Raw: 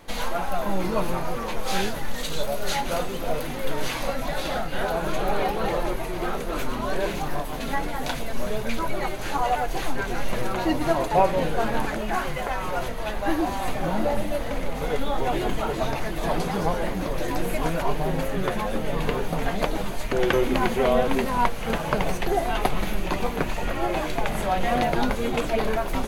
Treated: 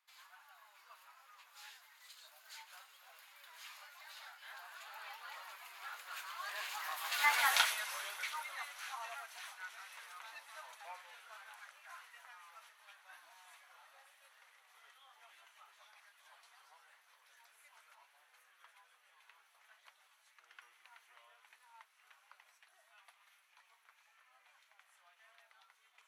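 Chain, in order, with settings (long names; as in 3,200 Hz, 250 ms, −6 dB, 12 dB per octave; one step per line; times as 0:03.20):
source passing by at 0:07.45, 22 m/s, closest 3.3 metres
high-pass filter 1,100 Hz 24 dB per octave
in parallel at −4.5 dB: soft clipping −32 dBFS, distortion −11 dB
on the sum: level +3.5 dB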